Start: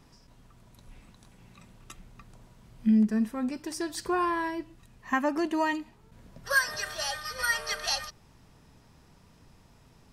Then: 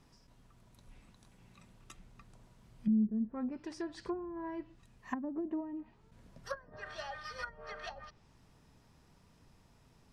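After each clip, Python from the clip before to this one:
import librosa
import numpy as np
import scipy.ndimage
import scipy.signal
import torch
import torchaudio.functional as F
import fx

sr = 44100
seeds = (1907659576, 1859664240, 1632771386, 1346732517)

y = fx.env_lowpass_down(x, sr, base_hz=320.0, full_db=-23.5)
y = F.gain(torch.from_numpy(y), -6.5).numpy()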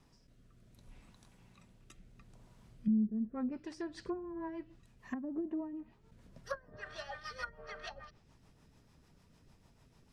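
y = fx.rotary_switch(x, sr, hz=0.65, then_hz=6.7, switch_at_s=2.48)
y = F.gain(torch.from_numpy(y), 1.0).numpy()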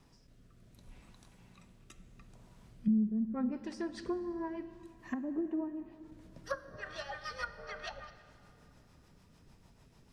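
y = fx.rev_plate(x, sr, seeds[0], rt60_s=3.1, hf_ratio=0.65, predelay_ms=0, drr_db=12.0)
y = F.gain(torch.from_numpy(y), 2.5).numpy()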